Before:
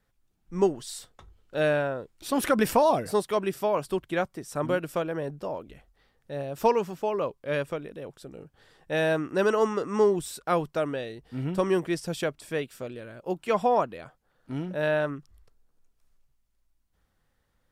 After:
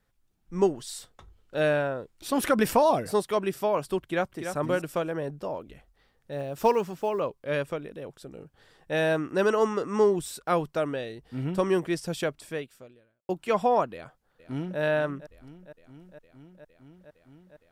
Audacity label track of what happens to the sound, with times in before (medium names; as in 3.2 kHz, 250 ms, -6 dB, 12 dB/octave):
4.000000	4.520000	echo throw 290 ms, feedback 15%, level -7.5 dB
6.320000	7.220000	block-companded coder 7-bit
12.400000	13.290000	fade out quadratic
13.930000	14.800000	echo throw 460 ms, feedback 85%, level -14.5 dB